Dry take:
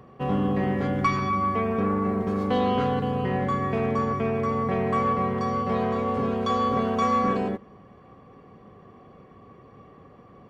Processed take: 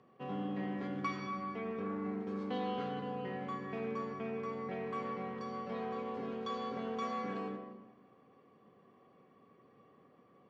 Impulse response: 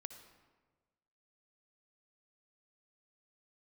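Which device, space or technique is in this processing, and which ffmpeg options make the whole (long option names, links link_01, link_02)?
supermarket ceiling speaker: -filter_complex "[0:a]highpass=230,lowpass=5100,equalizer=frequency=780:width=0.37:gain=-5.5[link_01];[1:a]atrim=start_sample=2205[link_02];[link_01][link_02]afir=irnorm=-1:irlink=0,volume=-4dB"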